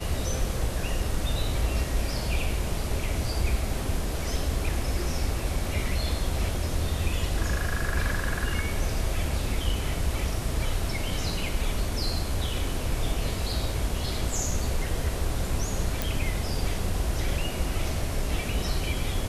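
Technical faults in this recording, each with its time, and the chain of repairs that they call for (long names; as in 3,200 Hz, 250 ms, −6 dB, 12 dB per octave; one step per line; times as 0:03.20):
0:16.02: click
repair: click removal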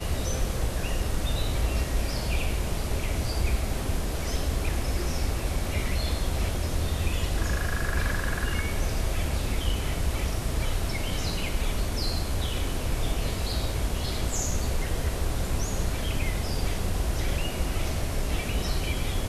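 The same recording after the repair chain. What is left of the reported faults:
none of them is left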